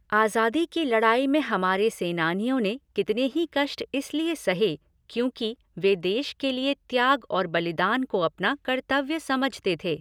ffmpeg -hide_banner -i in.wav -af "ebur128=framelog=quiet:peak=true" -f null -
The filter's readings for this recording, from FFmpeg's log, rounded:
Integrated loudness:
  I:         -25.3 LUFS
  Threshold: -35.4 LUFS
Loudness range:
  LRA:         2.9 LU
  Threshold: -45.8 LUFS
  LRA low:   -27.2 LUFS
  LRA high:  -24.3 LUFS
True peak:
  Peak:       -7.3 dBFS